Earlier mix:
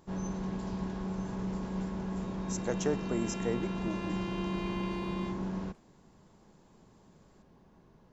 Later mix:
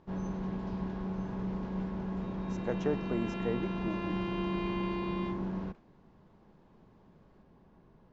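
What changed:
speech: add low-pass 3.2 kHz 6 dB/octave; second sound +3.5 dB; master: add distance through air 180 m

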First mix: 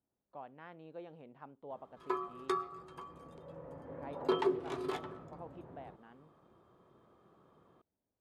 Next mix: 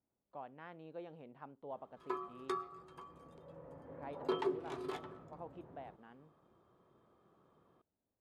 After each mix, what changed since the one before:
background -4.5 dB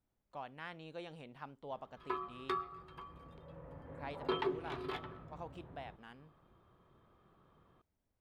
background: add distance through air 390 m; master: remove band-pass filter 410 Hz, Q 0.58

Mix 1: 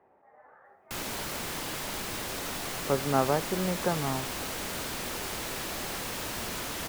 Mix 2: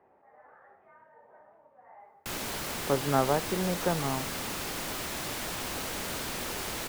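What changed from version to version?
background: entry +1.35 s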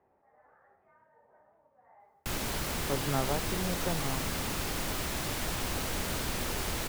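speech -7.5 dB; master: add bass shelf 120 Hz +12 dB

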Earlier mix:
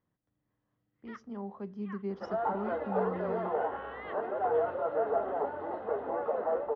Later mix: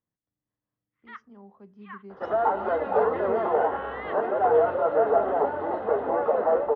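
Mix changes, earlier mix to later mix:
speech -9.0 dB; first sound +6.5 dB; second sound +8.5 dB

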